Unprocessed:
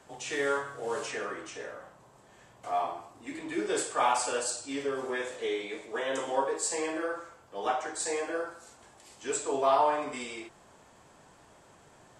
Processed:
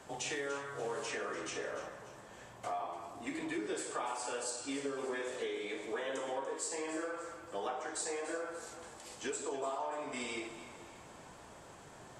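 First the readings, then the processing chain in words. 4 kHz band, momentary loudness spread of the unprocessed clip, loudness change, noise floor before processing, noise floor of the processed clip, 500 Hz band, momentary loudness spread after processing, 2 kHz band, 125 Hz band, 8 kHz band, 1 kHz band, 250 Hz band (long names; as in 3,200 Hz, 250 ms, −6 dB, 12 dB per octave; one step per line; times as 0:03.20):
−5.0 dB, 15 LU, −8.0 dB, −58 dBFS, −54 dBFS, −7.0 dB, 14 LU, −5.5 dB, −2.0 dB, −6.0 dB, −10.0 dB, −4.5 dB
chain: downward compressor 10 to 1, threshold −39 dBFS, peak gain reduction 19 dB
delay that swaps between a low-pass and a high-pass 146 ms, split 1,300 Hz, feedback 67%, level −9 dB
level +3 dB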